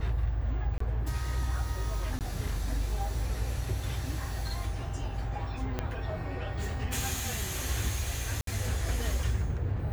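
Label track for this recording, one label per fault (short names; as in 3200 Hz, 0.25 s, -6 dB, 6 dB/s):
0.780000	0.800000	gap 24 ms
2.190000	2.210000	gap 18 ms
5.790000	5.790000	pop -17 dBFS
8.410000	8.470000	gap 63 ms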